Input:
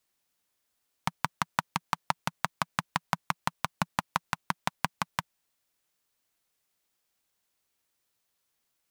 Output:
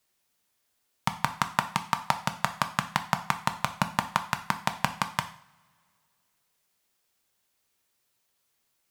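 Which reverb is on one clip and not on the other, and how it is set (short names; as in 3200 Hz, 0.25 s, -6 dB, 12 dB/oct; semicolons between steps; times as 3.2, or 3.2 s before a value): two-slope reverb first 0.49 s, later 2.4 s, from -25 dB, DRR 7.5 dB; gain +3 dB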